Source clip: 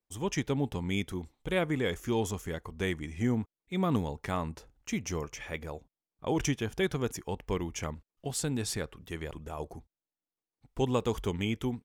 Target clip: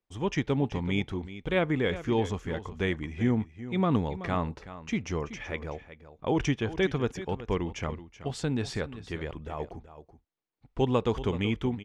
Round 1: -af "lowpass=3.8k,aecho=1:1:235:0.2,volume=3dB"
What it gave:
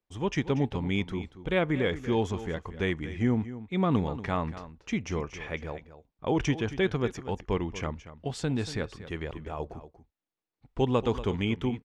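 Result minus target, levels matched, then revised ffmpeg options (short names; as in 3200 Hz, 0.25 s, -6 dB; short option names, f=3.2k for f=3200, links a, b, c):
echo 0.143 s early
-af "lowpass=3.8k,aecho=1:1:378:0.2,volume=3dB"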